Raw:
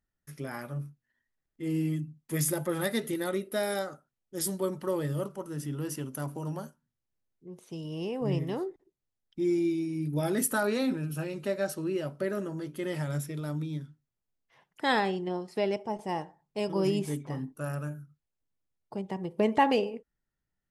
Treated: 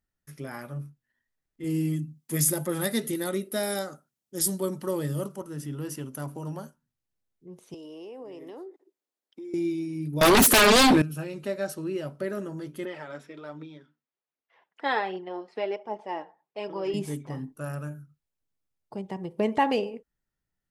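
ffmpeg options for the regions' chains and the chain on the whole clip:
ffmpeg -i in.wav -filter_complex "[0:a]asettb=1/sr,asplit=3[link_01][link_02][link_03];[link_01]atrim=end=1.644[link_04];[link_02]atrim=start=1.64:end=5.42,asetpts=PTS-STARTPTS,afade=type=in:duration=0.004:curve=qsin,afade=type=out:start_time=3.776:duration=0.004:curve=qsin,highpass=190,bass=frequency=250:gain=9,treble=frequency=4000:gain=7[link_05];[link_03]atrim=start=5.416[link_06];[link_04][link_05]acrossfade=duration=0.004:curve1=hsin:curve2=qsin[link_07];[link_07][link_06]acrossfade=duration=0.004:curve1=qsin:curve2=hsin,asettb=1/sr,asplit=3[link_08][link_09][link_10];[link_08]atrim=end=7.744[link_11];[link_09]atrim=start=7.74:end=9.54,asetpts=PTS-STARTPTS,afade=type=in:duration=0.004:curve=qsin,afade=type=out:start_time=1.796:duration=0.004:curve=qsin,highpass=frequency=280:width=0.5412,highpass=frequency=280:width=1.3066,acompressor=threshold=-44dB:ratio=5:attack=3.2:release=140:knee=1:detection=peak,equalizer=frequency=430:width_type=o:width=2.6:gain=4.5[link_12];[link_10]atrim=start=9.536[link_13];[link_11][link_12]acrossfade=duration=0.004:curve1=hsin:curve2=qsin[link_14];[link_14][link_13]acrossfade=duration=0.004:curve1=qsin:curve2=hsin,asettb=1/sr,asplit=3[link_15][link_16][link_17];[link_15]atrim=end=10.214[link_18];[link_16]atrim=start=10.21:end=11.02,asetpts=PTS-STARTPTS,afade=type=in:duration=0.004:curve=qsin,afade=type=out:start_time=0.806:duration=0.004:curve=qsin,highpass=200,equalizer=frequency=3800:width=1.6:gain=6,aeval=exprs='0.211*sin(PI/2*6.31*val(0)/0.211)':channel_layout=same[link_19];[link_17]atrim=start=11.016[link_20];[link_18][link_19]acrossfade=duration=0.004:curve1=hsin:curve2=qsin[link_21];[link_21][link_20]acrossfade=duration=0.004:curve1=qsin:curve2=hsin,asettb=1/sr,asplit=3[link_22][link_23][link_24];[link_22]atrim=end=12.854[link_25];[link_23]atrim=start=12.85:end=16.94,asetpts=PTS-STARTPTS,afade=type=in:duration=0.004:curve=qsin,afade=type=out:start_time=4.086:duration=0.004:curve=qsin,aphaser=in_gain=1:out_gain=1:delay=4.7:decay=0.38:speed=1.3:type=triangular,highpass=390,lowpass=3100[link_26];[link_24]atrim=start=16.936[link_27];[link_25][link_26]acrossfade=duration=0.004:curve1=hsin:curve2=qsin[link_28];[link_28][link_27]acrossfade=duration=0.004:curve1=qsin:curve2=hsin" out.wav

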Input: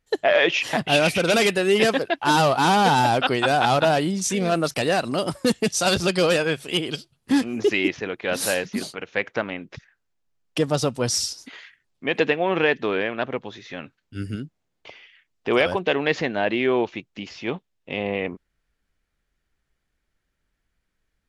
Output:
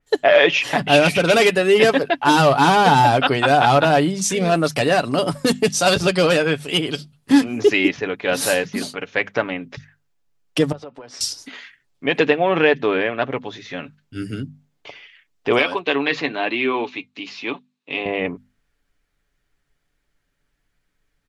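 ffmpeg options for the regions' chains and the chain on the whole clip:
ffmpeg -i in.wav -filter_complex "[0:a]asettb=1/sr,asplit=3[link_01][link_02][link_03];[link_01]atrim=end=10.724[link_04];[link_02]atrim=start=10.72:end=11.21,asetpts=PTS-STARTPTS,afade=type=in:duration=0.004:curve=qsin,afade=type=out:start_time=0.486:duration=0.004:curve=qsin,highpass=330,lowpass=2100,acompressor=threshold=-37dB:ratio=10:attack=3.2:release=140:knee=1:detection=peak[link_05];[link_03]atrim=start=11.206[link_06];[link_04][link_05]acrossfade=duration=0.004:curve1=hsin:curve2=qsin[link_07];[link_07][link_06]acrossfade=duration=0.004:curve1=qsin:curve2=hsin,asettb=1/sr,asplit=3[link_08][link_09][link_10];[link_08]atrim=end=15.594[link_11];[link_09]atrim=start=15.59:end=18.06,asetpts=PTS-STARTPTS,afade=type=in:duration=0.004:curve=qsin,afade=type=out:start_time=2.466:duration=0.004:curve=qsin,flanger=delay=3.1:depth=4.6:regen=-59:speed=1:shape=sinusoidal,highpass=frequency=140:width=0.5412,highpass=frequency=140:width=1.3066,equalizer=frequency=180:width_type=q:width=4:gain=-10,equalizer=frequency=280:width_type=q:width=4:gain=3,equalizer=frequency=580:width_type=q:width=4:gain=-5,equalizer=frequency=1100:width_type=q:width=4:gain=6,equalizer=frequency=2500:width_type=q:width=4:gain=7,equalizer=frequency=4000:width_type=q:width=4:gain=9,lowpass=frequency=9900:width=0.5412,lowpass=frequency=9900:width=1.3066[link_12];[link_10]atrim=start=18.056[link_13];[link_11][link_12]acrossfade=duration=0.004:curve1=hsin:curve2=qsin[link_14];[link_14][link_13]acrossfade=duration=0.004:curve1=qsin:curve2=hsin,bandreject=frequency=50:width_type=h:width=6,bandreject=frequency=100:width_type=h:width=6,bandreject=frequency=150:width_type=h:width=6,bandreject=frequency=200:width_type=h:width=6,bandreject=frequency=250:width_type=h:width=6,aecho=1:1:7:0.38,adynamicequalizer=threshold=0.0178:dfrequency=3600:dqfactor=0.7:tfrequency=3600:tqfactor=0.7:attack=5:release=100:ratio=0.375:range=2.5:mode=cutabove:tftype=highshelf,volume=4dB" out.wav

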